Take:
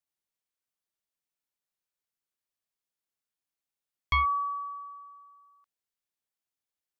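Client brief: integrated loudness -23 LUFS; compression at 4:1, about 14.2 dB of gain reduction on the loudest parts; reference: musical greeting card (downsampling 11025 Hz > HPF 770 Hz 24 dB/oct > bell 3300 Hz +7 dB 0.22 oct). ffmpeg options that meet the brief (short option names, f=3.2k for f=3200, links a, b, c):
-af "acompressor=threshold=-40dB:ratio=4,aresample=11025,aresample=44100,highpass=f=770:w=0.5412,highpass=f=770:w=1.3066,equalizer=f=3.3k:t=o:w=0.22:g=7,volume=18.5dB"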